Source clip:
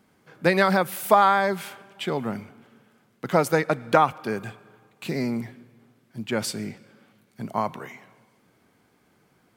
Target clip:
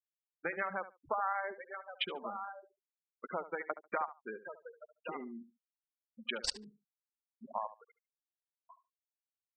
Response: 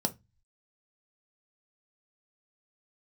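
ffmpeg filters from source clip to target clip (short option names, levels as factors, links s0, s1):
-filter_complex "[0:a]highpass=f=54:w=0.5412,highpass=f=54:w=1.3066,asplit=2[s0][s1];[s1]aecho=0:1:1123|2246|3369:0.158|0.0475|0.0143[s2];[s0][s2]amix=inputs=2:normalize=0,acompressor=threshold=0.0501:ratio=5,afwtdn=0.00891,aderivative,adynamicsmooth=sensitivity=6:basefreq=1100,afftfilt=real='re*gte(hypot(re,im),0.00562)':imag='im*gte(hypot(re,im),0.00562)':win_size=1024:overlap=0.75,asplit=2[s3][s4];[s4]adelay=72,lowpass=f=3100:p=1,volume=0.2,asplit=2[s5][s6];[s6]adelay=72,lowpass=f=3100:p=1,volume=0.16[s7];[s5][s7]amix=inputs=2:normalize=0[s8];[s3][s8]amix=inputs=2:normalize=0,volume=4.73"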